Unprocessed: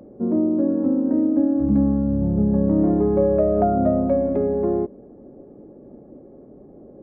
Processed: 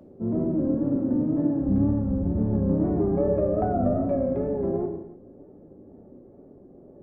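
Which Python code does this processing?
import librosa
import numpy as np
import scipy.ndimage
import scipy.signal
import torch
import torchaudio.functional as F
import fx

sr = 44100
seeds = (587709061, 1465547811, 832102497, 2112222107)

y = fx.octave_divider(x, sr, octaves=1, level_db=-5.0)
y = fx.wow_flutter(y, sr, seeds[0], rate_hz=2.1, depth_cents=89.0)
y = fx.rev_gated(y, sr, seeds[1], gate_ms=360, shape='falling', drr_db=2.5)
y = F.gain(torch.from_numpy(y), -7.0).numpy()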